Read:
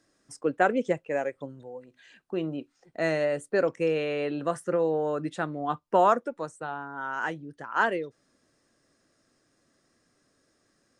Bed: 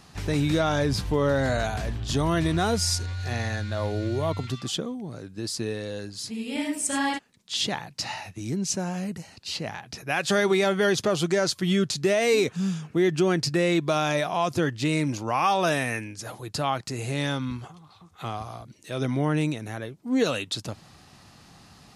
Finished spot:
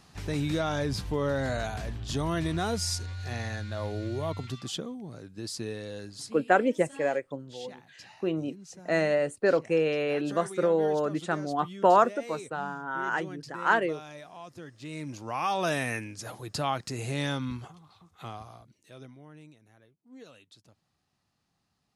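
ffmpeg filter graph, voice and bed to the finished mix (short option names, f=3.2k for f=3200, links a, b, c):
-filter_complex "[0:a]adelay=5900,volume=1dB[a];[1:a]volume=11.5dB,afade=t=out:st=6.1:d=0.44:silence=0.188365,afade=t=in:st=14.76:d=1.13:silence=0.141254,afade=t=out:st=17.57:d=1.59:silence=0.0707946[b];[a][b]amix=inputs=2:normalize=0"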